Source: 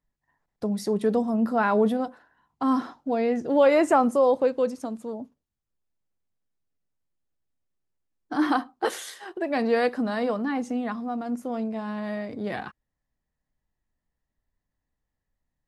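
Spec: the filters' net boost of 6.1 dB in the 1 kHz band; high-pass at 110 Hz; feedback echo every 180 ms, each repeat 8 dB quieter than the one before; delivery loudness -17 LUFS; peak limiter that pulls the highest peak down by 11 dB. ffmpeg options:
-af "highpass=110,equalizer=f=1000:t=o:g=8,alimiter=limit=0.168:level=0:latency=1,aecho=1:1:180|360|540|720|900:0.398|0.159|0.0637|0.0255|0.0102,volume=2.82"

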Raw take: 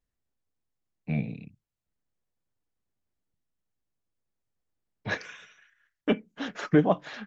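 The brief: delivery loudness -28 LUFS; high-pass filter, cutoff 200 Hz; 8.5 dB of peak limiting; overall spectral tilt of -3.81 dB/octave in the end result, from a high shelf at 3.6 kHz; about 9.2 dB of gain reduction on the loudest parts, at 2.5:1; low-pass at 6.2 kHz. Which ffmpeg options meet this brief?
-af "highpass=200,lowpass=6200,highshelf=f=3600:g=4.5,acompressor=threshold=0.0316:ratio=2.5,volume=4.22,alimiter=limit=0.2:level=0:latency=1"

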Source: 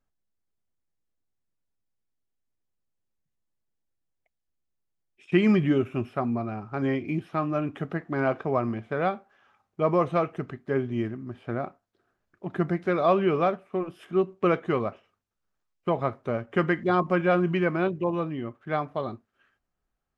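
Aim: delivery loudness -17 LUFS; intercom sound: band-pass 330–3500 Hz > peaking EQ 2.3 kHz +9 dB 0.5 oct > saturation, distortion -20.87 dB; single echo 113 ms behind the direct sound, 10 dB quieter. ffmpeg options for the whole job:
-af "highpass=330,lowpass=3500,equalizer=f=2300:t=o:w=0.5:g=9,aecho=1:1:113:0.316,asoftclip=threshold=0.211,volume=3.98"

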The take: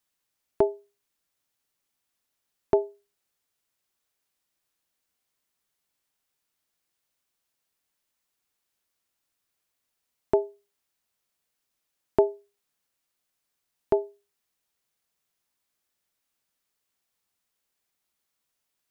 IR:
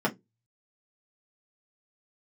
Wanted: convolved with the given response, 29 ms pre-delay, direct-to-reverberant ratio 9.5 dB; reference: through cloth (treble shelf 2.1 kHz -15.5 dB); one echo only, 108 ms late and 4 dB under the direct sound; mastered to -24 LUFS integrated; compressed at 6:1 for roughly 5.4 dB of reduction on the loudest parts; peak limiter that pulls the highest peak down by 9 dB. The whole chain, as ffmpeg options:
-filter_complex "[0:a]acompressor=threshold=0.0794:ratio=6,alimiter=limit=0.141:level=0:latency=1,aecho=1:1:108:0.631,asplit=2[s0][s1];[1:a]atrim=start_sample=2205,adelay=29[s2];[s1][s2]afir=irnorm=-1:irlink=0,volume=0.0944[s3];[s0][s3]amix=inputs=2:normalize=0,highshelf=f=2100:g=-15.5,volume=5.01"

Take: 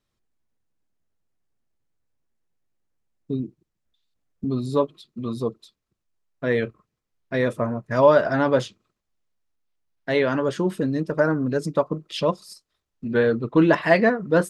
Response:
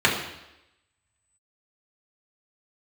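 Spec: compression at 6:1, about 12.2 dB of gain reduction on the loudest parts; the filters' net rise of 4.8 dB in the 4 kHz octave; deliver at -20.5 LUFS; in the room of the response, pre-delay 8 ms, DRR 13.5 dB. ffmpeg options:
-filter_complex "[0:a]equalizer=f=4000:t=o:g=6,acompressor=threshold=0.0631:ratio=6,asplit=2[s0][s1];[1:a]atrim=start_sample=2205,adelay=8[s2];[s1][s2]afir=irnorm=-1:irlink=0,volume=0.0237[s3];[s0][s3]amix=inputs=2:normalize=0,volume=2.99"

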